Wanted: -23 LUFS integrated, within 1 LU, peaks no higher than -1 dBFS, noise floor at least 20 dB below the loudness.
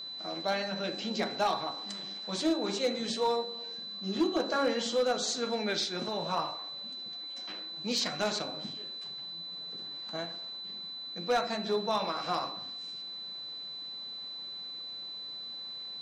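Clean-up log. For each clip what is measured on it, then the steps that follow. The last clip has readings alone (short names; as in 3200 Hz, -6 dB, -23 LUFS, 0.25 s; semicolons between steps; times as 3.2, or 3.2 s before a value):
clipped 0.4%; flat tops at -21.5 dBFS; steady tone 4000 Hz; tone level -39 dBFS; loudness -33.5 LUFS; peak -21.5 dBFS; loudness target -23.0 LUFS
-> clip repair -21.5 dBFS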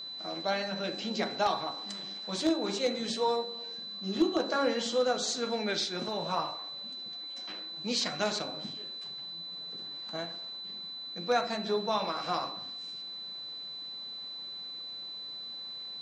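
clipped 0.0%; steady tone 4000 Hz; tone level -39 dBFS
-> notch 4000 Hz, Q 30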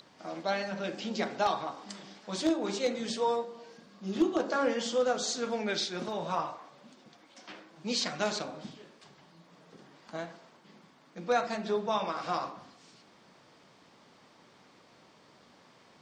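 steady tone none; loudness -32.5 LUFS; peak -13.0 dBFS; loudness target -23.0 LUFS
-> gain +9.5 dB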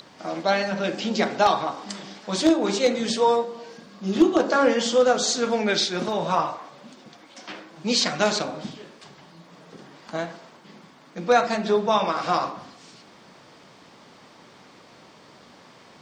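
loudness -23.0 LUFS; peak -3.5 dBFS; noise floor -51 dBFS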